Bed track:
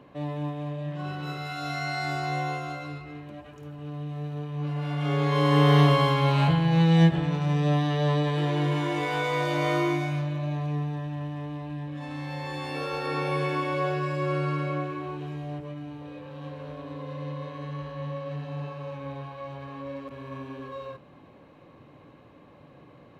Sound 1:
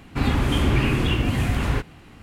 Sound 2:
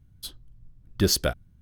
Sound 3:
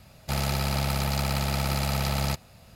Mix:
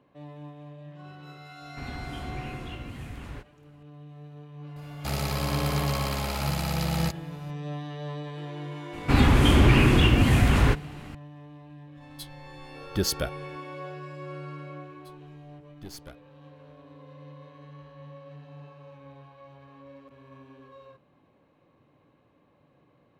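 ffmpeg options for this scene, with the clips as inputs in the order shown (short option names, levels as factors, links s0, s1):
-filter_complex "[1:a]asplit=2[s0][s1];[2:a]asplit=2[s2][s3];[0:a]volume=0.266[s4];[s1]acontrast=66[s5];[s3]aeval=exprs='(tanh(8.91*val(0)+0.75)-tanh(0.75))/8.91':c=same[s6];[s0]atrim=end=2.22,asetpts=PTS-STARTPTS,volume=0.133,afade=t=in:d=0.004:c=hsin,afade=t=out:st=2.216:d=0.004:c=hsin,adelay=1610[s7];[3:a]atrim=end=2.75,asetpts=PTS-STARTPTS,volume=0.708,afade=t=in:d=0.004:c=hsin,afade=t=out:st=2.746:d=0.004:c=hsin,adelay=4760[s8];[s5]atrim=end=2.22,asetpts=PTS-STARTPTS,volume=0.668,afade=t=in:d=0.004:c=hsin,afade=t=out:st=2.216:d=0.004:c=hsin,adelay=8930[s9];[s2]atrim=end=1.61,asetpts=PTS-STARTPTS,volume=0.596,afade=t=in:d=0.004:c=hsin,afade=t=out:st=1.606:d=0.004:c=hsin,adelay=11960[s10];[s6]atrim=end=1.61,asetpts=PTS-STARTPTS,volume=0.141,afade=t=in:d=0.004:c=hsin,afade=t=out:st=1.606:d=0.004:c=hsin,adelay=14820[s11];[s4][s7][s8][s9][s10][s11]amix=inputs=6:normalize=0"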